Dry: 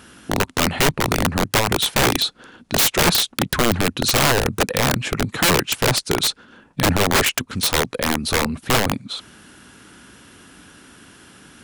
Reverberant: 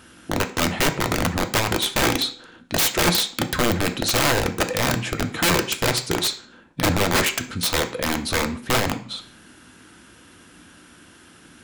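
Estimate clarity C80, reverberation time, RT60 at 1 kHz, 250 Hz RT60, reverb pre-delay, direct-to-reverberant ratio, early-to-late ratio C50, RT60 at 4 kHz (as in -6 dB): 17.0 dB, 0.50 s, 0.45 s, 0.45 s, 3 ms, 5.5 dB, 13.0 dB, 0.40 s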